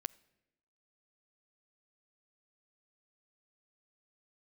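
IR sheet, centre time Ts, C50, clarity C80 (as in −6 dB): 2 ms, 22.5 dB, 24.5 dB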